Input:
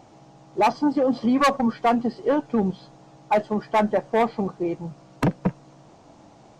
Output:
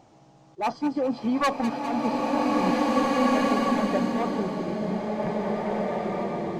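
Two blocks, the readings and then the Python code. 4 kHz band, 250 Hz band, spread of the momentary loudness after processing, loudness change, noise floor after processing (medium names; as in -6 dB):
+0.5 dB, -0.5 dB, 7 LU, -2.5 dB, -55 dBFS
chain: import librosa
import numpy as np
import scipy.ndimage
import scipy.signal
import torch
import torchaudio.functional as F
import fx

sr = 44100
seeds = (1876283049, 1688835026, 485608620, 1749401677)

p1 = fx.auto_swell(x, sr, attack_ms=133.0)
p2 = p1 + fx.echo_wet_highpass(p1, sr, ms=201, feedback_pct=61, hz=1600.0, wet_db=-10.0, dry=0)
p3 = fx.rev_bloom(p2, sr, seeds[0], attack_ms=2030, drr_db=-5.0)
y = p3 * librosa.db_to_amplitude(-5.0)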